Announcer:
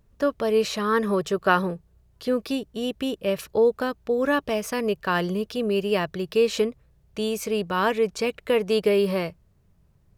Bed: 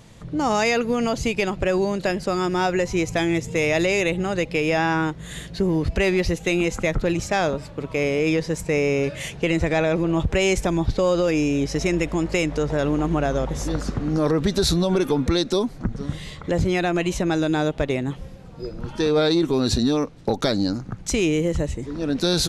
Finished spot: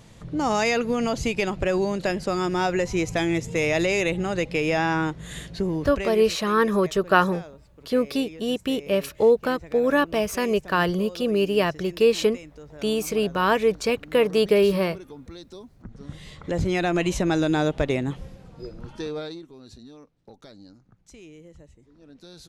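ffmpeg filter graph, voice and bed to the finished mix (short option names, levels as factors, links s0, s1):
-filter_complex "[0:a]adelay=5650,volume=1.26[s0];[1:a]volume=8.41,afade=t=out:st=5.42:d=0.89:silence=0.112202,afade=t=in:st=15.77:d=1.22:silence=0.0944061,afade=t=out:st=17.97:d=1.49:silence=0.0562341[s1];[s0][s1]amix=inputs=2:normalize=0"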